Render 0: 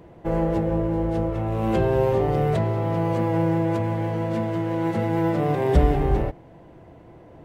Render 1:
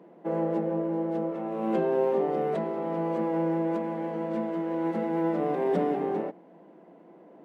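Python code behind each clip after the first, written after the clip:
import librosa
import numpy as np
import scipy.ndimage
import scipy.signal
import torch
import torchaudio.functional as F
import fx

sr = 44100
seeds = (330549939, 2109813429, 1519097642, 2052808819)

y = scipy.signal.sosfilt(scipy.signal.ellip(4, 1.0, 40, 180.0, 'highpass', fs=sr, output='sos'), x)
y = fx.high_shelf(y, sr, hz=2600.0, db=-11.5)
y = F.gain(torch.from_numpy(y), -3.0).numpy()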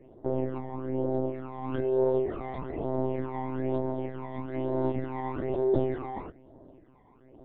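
y = fx.phaser_stages(x, sr, stages=12, low_hz=450.0, high_hz=2400.0, hz=1.1, feedback_pct=50)
y = fx.lpc_monotone(y, sr, seeds[0], pitch_hz=130.0, order=16)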